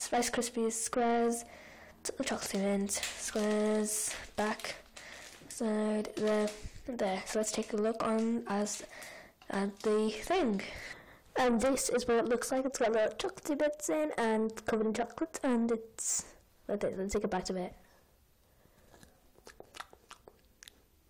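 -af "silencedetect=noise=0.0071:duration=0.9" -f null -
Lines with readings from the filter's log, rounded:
silence_start: 17.72
silence_end: 18.94 | silence_duration: 1.22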